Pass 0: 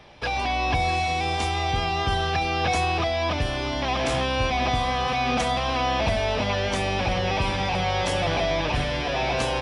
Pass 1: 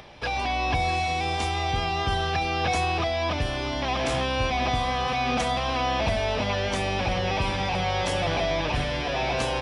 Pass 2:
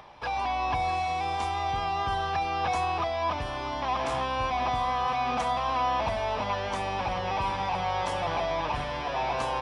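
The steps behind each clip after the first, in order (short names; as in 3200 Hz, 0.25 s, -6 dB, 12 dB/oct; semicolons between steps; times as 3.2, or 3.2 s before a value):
upward compressor, threshold -40 dBFS; gain -1.5 dB
bell 990 Hz +12.5 dB 0.98 oct; gain -8.5 dB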